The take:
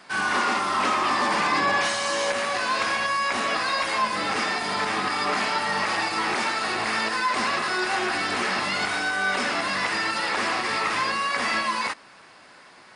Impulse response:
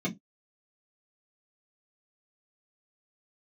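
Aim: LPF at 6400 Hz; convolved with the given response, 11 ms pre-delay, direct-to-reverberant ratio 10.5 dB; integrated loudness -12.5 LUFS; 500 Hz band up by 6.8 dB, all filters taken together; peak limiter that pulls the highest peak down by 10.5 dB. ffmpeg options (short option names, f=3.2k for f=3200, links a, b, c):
-filter_complex "[0:a]lowpass=6.4k,equalizer=f=500:t=o:g=8.5,alimiter=limit=-20dB:level=0:latency=1,asplit=2[a][b];[1:a]atrim=start_sample=2205,adelay=11[c];[b][c]afir=irnorm=-1:irlink=0,volume=-16.5dB[d];[a][d]amix=inputs=2:normalize=0,volume=14.5dB"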